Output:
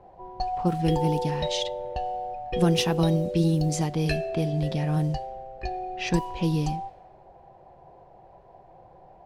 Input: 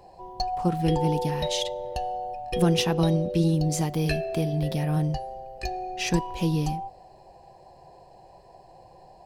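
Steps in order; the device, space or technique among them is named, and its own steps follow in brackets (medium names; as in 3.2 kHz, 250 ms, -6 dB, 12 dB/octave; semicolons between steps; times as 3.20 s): cassette deck with a dynamic noise filter (white noise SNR 31 dB; level-controlled noise filter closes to 1.1 kHz, open at -19.5 dBFS)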